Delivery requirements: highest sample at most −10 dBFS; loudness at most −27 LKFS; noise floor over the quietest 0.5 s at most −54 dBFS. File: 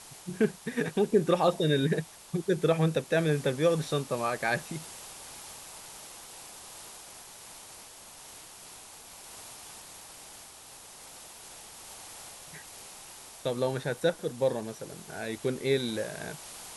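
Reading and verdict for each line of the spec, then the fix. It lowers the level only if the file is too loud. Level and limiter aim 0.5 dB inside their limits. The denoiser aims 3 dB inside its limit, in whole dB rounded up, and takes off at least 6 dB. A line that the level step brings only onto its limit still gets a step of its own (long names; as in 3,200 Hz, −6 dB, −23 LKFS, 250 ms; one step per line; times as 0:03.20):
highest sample −11.5 dBFS: in spec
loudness −29.5 LKFS: in spec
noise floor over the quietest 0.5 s −49 dBFS: out of spec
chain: broadband denoise 8 dB, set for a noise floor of −49 dBFS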